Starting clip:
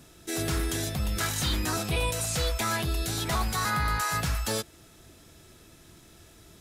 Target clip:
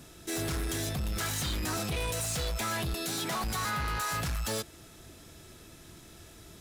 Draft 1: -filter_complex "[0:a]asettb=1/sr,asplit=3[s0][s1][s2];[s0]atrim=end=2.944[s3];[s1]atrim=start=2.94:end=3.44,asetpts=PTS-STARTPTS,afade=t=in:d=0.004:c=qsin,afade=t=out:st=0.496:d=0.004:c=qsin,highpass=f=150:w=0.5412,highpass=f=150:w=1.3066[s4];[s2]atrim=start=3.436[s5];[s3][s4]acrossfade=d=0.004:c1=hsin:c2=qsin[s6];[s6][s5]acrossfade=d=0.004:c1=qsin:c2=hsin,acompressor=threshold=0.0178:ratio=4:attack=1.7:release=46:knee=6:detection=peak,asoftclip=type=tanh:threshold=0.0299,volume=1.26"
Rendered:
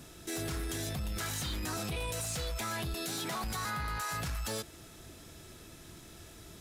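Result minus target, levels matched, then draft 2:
compression: peak gain reduction +7.5 dB
-filter_complex "[0:a]asettb=1/sr,asplit=3[s0][s1][s2];[s0]atrim=end=2.944[s3];[s1]atrim=start=2.94:end=3.44,asetpts=PTS-STARTPTS,afade=t=in:d=0.004:c=qsin,afade=t=out:st=0.496:d=0.004:c=qsin,highpass=f=150:w=0.5412,highpass=f=150:w=1.3066[s4];[s2]atrim=start=3.436[s5];[s3][s4]acrossfade=d=0.004:c1=hsin:c2=qsin[s6];[s6][s5]acrossfade=d=0.004:c1=qsin:c2=hsin,acompressor=threshold=0.0596:ratio=4:attack=1.7:release=46:knee=6:detection=peak,asoftclip=type=tanh:threshold=0.0299,volume=1.26"

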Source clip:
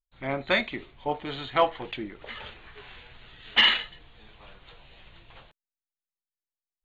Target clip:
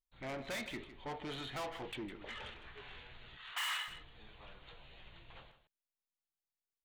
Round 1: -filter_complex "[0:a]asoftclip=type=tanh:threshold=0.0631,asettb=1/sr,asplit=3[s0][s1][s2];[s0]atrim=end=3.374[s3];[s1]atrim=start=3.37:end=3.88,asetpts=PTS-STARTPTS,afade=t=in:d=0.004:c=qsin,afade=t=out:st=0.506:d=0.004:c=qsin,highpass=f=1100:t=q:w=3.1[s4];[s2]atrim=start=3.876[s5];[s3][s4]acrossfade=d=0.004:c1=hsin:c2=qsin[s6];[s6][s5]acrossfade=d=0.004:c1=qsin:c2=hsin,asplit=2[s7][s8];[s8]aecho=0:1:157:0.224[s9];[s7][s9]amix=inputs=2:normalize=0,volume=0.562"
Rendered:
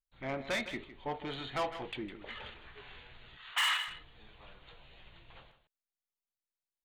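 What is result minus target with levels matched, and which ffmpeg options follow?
saturation: distortion -5 dB
-filter_complex "[0:a]asoftclip=type=tanh:threshold=0.0211,asettb=1/sr,asplit=3[s0][s1][s2];[s0]atrim=end=3.374[s3];[s1]atrim=start=3.37:end=3.88,asetpts=PTS-STARTPTS,afade=t=in:d=0.004:c=qsin,afade=t=out:st=0.506:d=0.004:c=qsin,highpass=f=1100:t=q:w=3.1[s4];[s2]atrim=start=3.876[s5];[s3][s4]acrossfade=d=0.004:c1=hsin:c2=qsin[s6];[s6][s5]acrossfade=d=0.004:c1=qsin:c2=hsin,asplit=2[s7][s8];[s8]aecho=0:1:157:0.224[s9];[s7][s9]amix=inputs=2:normalize=0,volume=0.562"

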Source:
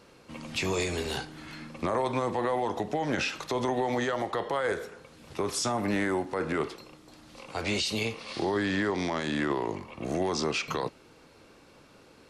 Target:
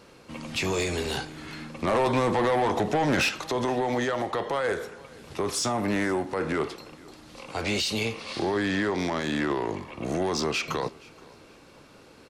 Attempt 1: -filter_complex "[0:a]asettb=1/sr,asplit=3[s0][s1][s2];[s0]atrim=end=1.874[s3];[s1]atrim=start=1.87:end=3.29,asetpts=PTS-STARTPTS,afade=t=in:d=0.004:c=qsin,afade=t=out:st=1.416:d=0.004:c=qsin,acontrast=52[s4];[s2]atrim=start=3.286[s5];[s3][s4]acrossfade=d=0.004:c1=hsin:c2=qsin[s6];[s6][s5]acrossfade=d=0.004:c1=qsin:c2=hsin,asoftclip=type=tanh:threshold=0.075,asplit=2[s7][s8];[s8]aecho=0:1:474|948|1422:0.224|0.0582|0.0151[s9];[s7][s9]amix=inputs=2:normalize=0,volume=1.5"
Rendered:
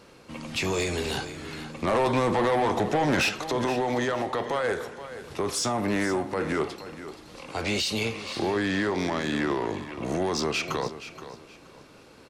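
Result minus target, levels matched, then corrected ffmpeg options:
echo-to-direct +10.5 dB
-filter_complex "[0:a]asettb=1/sr,asplit=3[s0][s1][s2];[s0]atrim=end=1.874[s3];[s1]atrim=start=1.87:end=3.29,asetpts=PTS-STARTPTS,afade=t=in:d=0.004:c=qsin,afade=t=out:st=1.416:d=0.004:c=qsin,acontrast=52[s4];[s2]atrim=start=3.286[s5];[s3][s4]acrossfade=d=0.004:c1=hsin:c2=qsin[s6];[s6][s5]acrossfade=d=0.004:c1=qsin:c2=hsin,asoftclip=type=tanh:threshold=0.075,asplit=2[s7][s8];[s8]aecho=0:1:474|948:0.0668|0.0174[s9];[s7][s9]amix=inputs=2:normalize=0,volume=1.5"

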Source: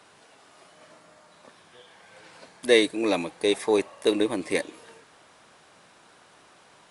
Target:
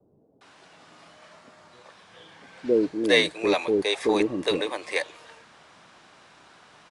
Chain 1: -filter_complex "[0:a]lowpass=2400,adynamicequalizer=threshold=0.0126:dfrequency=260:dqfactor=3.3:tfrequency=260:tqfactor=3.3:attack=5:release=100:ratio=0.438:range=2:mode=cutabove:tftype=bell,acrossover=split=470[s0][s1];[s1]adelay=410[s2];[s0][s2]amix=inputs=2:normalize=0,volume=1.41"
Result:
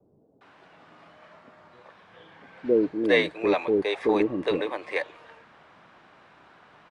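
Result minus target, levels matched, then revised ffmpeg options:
8 kHz band -15.0 dB
-filter_complex "[0:a]lowpass=6500,adynamicequalizer=threshold=0.0126:dfrequency=260:dqfactor=3.3:tfrequency=260:tqfactor=3.3:attack=5:release=100:ratio=0.438:range=2:mode=cutabove:tftype=bell,acrossover=split=470[s0][s1];[s1]adelay=410[s2];[s0][s2]amix=inputs=2:normalize=0,volume=1.41"

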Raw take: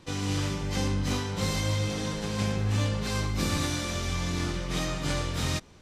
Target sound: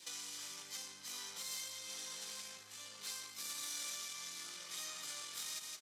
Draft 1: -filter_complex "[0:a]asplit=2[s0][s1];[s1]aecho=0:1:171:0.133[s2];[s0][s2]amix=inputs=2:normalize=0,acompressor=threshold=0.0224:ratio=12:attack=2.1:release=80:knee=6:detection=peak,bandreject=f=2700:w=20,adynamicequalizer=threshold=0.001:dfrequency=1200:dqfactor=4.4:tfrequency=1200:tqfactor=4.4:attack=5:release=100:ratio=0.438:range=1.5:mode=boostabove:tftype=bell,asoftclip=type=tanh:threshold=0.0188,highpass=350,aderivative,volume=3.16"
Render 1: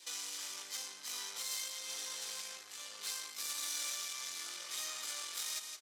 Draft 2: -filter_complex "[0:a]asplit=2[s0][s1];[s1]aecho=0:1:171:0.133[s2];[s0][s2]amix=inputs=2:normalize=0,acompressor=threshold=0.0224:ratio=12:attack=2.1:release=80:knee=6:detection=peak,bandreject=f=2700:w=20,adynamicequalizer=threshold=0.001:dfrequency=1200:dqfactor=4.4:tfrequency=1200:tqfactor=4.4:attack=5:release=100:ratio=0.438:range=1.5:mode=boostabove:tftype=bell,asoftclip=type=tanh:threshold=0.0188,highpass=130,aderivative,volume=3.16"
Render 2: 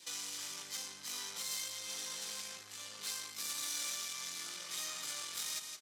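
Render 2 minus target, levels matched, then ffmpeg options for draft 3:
compression: peak gain reduction -5.5 dB
-filter_complex "[0:a]asplit=2[s0][s1];[s1]aecho=0:1:171:0.133[s2];[s0][s2]amix=inputs=2:normalize=0,acompressor=threshold=0.0112:ratio=12:attack=2.1:release=80:knee=6:detection=peak,bandreject=f=2700:w=20,adynamicequalizer=threshold=0.001:dfrequency=1200:dqfactor=4.4:tfrequency=1200:tqfactor=4.4:attack=5:release=100:ratio=0.438:range=1.5:mode=boostabove:tftype=bell,asoftclip=type=tanh:threshold=0.0188,highpass=130,aderivative,volume=3.16"

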